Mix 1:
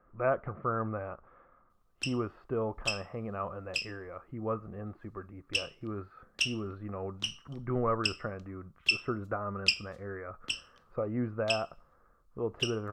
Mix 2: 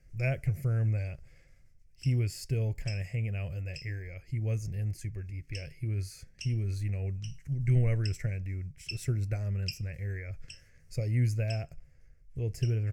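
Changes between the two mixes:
speech: remove ladder low-pass 1300 Hz, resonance 80%; master: add EQ curve 140 Hz 0 dB, 210 Hz -17 dB, 660 Hz -19 dB, 980 Hz -27 dB, 2200 Hz -9 dB, 3600 Hz -27 dB, 5200 Hz -8 dB, 15000 Hz -16 dB

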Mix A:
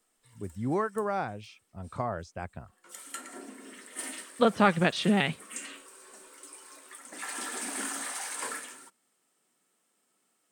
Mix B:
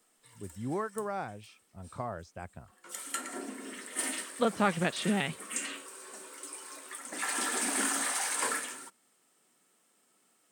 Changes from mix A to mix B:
speech -5.0 dB; background +4.5 dB

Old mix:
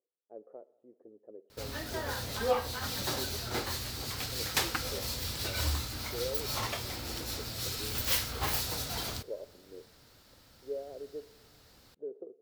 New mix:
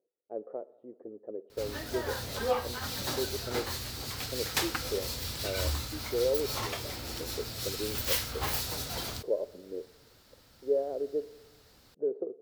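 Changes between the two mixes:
speech +10.0 dB; background: send off

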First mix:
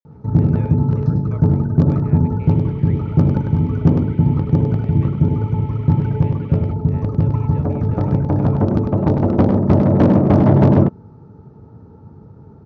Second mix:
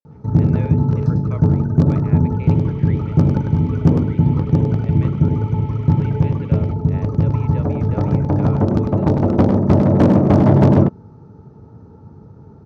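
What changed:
speech +5.0 dB; master: remove air absorption 99 m

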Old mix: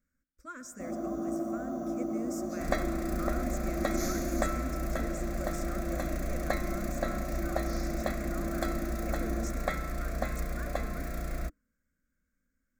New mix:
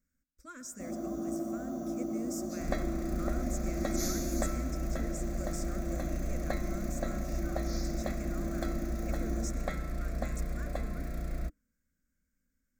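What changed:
second sound: add high shelf 2700 Hz -11 dB; master: add EQ curve 180 Hz 0 dB, 1200 Hz -6 dB, 4200 Hz +3 dB

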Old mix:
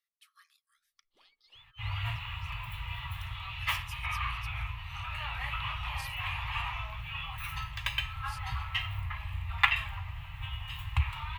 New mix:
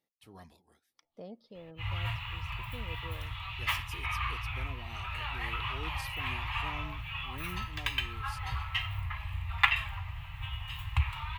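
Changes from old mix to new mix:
speech: remove brick-wall FIR high-pass 1100 Hz; first sound -11.5 dB

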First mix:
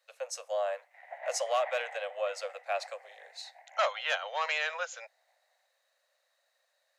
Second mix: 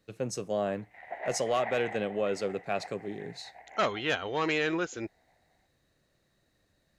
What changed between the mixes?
background +4.5 dB; master: remove steep high-pass 520 Hz 96 dB/oct

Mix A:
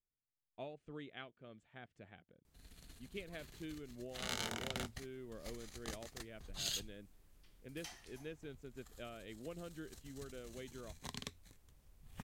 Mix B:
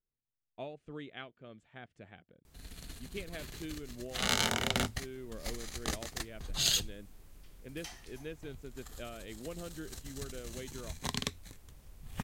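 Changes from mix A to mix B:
speech +4.5 dB; first sound +11.0 dB; second sound +4.0 dB

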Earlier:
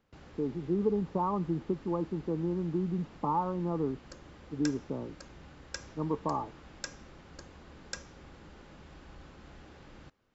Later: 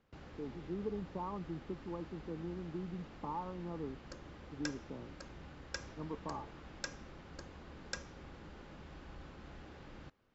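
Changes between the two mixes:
speech -11.0 dB; background: add air absorption 59 m

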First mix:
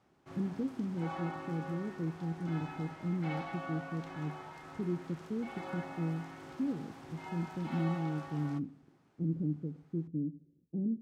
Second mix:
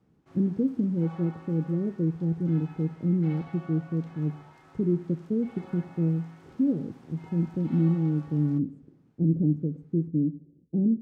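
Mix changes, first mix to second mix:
speech +10.0 dB; background -6.0 dB

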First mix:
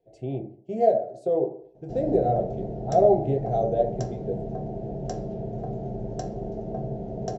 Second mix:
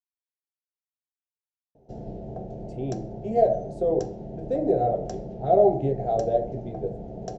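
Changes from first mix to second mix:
speech: entry +2.55 s; background: send -10.0 dB

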